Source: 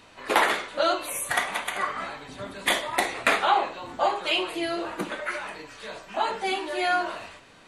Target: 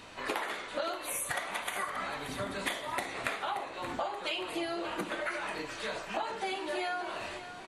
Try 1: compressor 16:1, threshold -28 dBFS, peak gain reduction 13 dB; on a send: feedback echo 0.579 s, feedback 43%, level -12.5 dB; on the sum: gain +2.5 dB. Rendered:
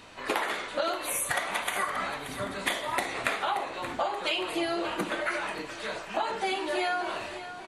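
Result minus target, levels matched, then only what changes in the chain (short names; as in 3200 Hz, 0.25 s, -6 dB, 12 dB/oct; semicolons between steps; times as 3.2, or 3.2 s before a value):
compressor: peak gain reduction -5.5 dB
change: compressor 16:1, threshold -34 dBFS, peak gain reduction 18.5 dB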